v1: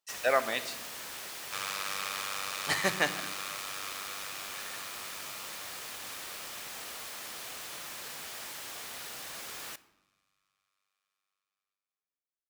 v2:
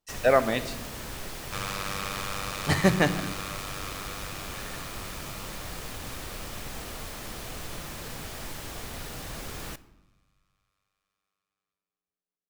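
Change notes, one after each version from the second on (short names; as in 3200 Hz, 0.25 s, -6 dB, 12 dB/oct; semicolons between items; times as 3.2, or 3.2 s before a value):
master: remove HPF 1200 Hz 6 dB/oct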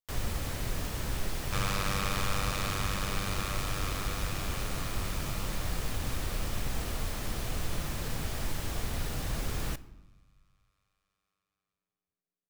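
speech: muted; master: add low shelf 160 Hz +9.5 dB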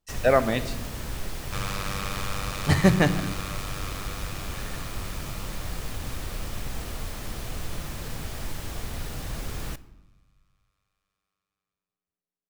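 speech: unmuted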